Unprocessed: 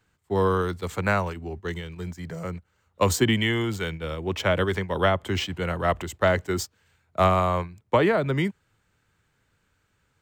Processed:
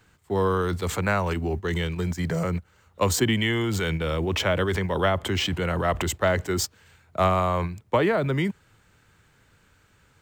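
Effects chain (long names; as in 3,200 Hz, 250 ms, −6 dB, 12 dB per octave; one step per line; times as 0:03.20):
in parallel at +1 dB: compressor whose output falls as the input rises −34 dBFS, ratio −1
on the sum: floating-point word with a short mantissa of 6 bits
level −2 dB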